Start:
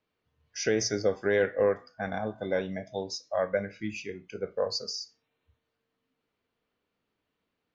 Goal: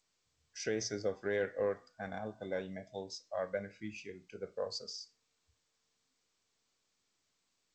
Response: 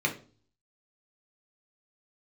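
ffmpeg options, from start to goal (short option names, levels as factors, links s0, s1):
-af "volume=0.355" -ar 16000 -c:a g722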